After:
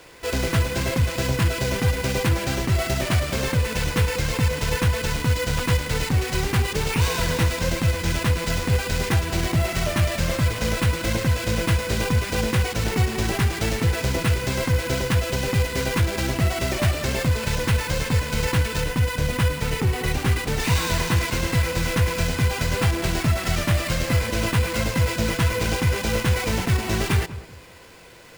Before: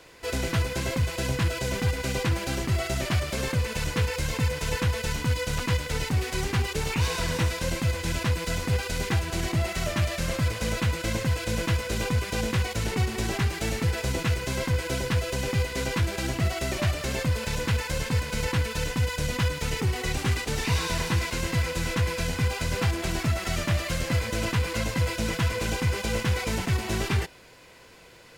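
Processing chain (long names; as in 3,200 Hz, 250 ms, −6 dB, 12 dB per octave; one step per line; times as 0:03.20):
0:18.81–0:20.60: high-shelf EQ 6,400 Hz −9 dB
sample-rate reduction 12,000 Hz, jitter 0%
feedback echo with a low-pass in the loop 194 ms, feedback 32%, low-pass 1,200 Hz, level −14 dB
level +4.5 dB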